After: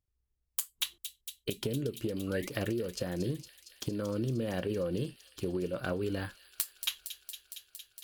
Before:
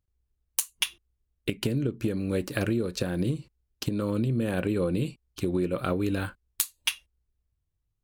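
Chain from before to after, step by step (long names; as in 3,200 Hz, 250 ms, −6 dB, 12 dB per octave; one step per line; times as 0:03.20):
sound drawn into the spectrogram rise, 0:02.27–0:02.49, 1,100–2,200 Hz −35 dBFS
formants moved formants +2 semitones
delay with a high-pass on its return 230 ms, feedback 81%, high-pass 3,600 Hz, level −8.5 dB
level −6 dB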